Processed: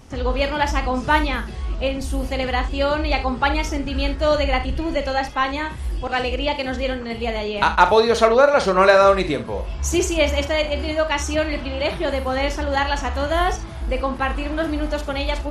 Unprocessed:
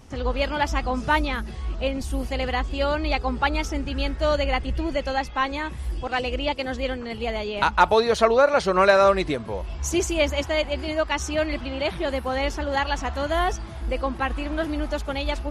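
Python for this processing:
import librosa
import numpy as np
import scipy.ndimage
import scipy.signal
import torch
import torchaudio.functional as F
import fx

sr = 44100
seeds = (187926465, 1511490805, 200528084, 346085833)

y = fx.room_early_taps(x, sr, ms=(43, 73), db=(-10.0, -15.0))
y = F.gain(torch.from_numpy(y), 3.0).numpy()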